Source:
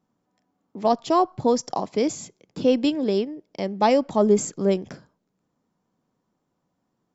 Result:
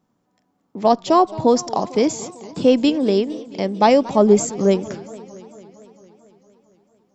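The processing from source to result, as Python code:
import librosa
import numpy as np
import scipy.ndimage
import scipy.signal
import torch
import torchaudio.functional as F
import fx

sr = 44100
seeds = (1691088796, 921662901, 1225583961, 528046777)

y = fx.echo_warbled(x, sr, ms=226, feedback_pct=70, rate_hz=2.8, cents=219, wet_db=-19.0)
y = F.gain(torch.from_numpy(y), 5.0).numpy()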